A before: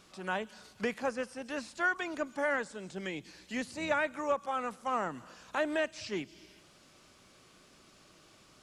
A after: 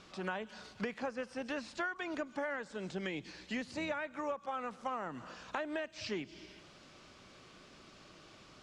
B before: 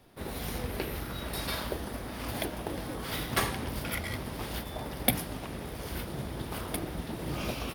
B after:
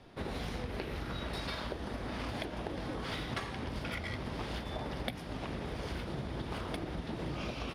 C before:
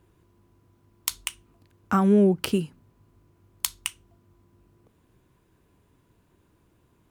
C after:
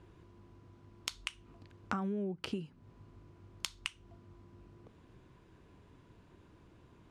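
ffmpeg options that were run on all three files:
ffmpeg -i in.wav -af "lowpass=5300,acompressor=threshold=-38dB:ratio=10,volume=3.5dB" out.wav

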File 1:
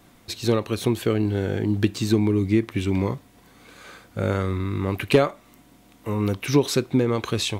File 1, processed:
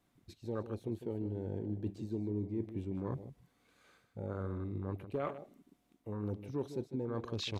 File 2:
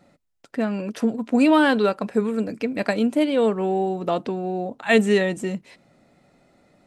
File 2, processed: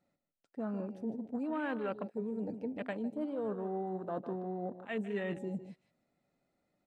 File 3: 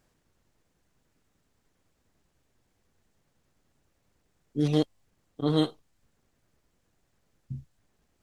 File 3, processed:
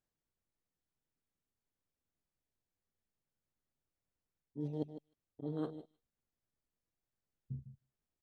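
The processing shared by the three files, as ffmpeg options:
ffmpeg -i in.wav -af "aresample=32000,aresample=44100,areverse,acompressor=threshold=-30dB:ratio=5,areverse,aecho=1:1:153|306:0.282|0.0451,afwtdn=0.0126,volume=-5.5dB" out.wav

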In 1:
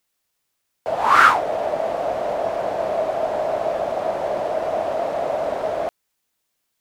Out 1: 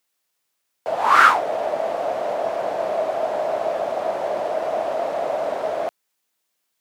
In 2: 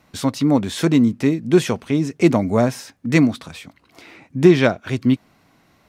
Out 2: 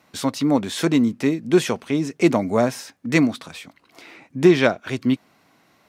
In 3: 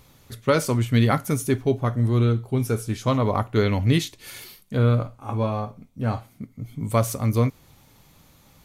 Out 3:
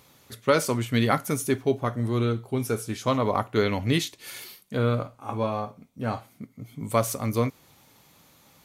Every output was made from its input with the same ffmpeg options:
ffmpeg -i in.wav -af "highpass=frequency=250:poles=1" out.wav

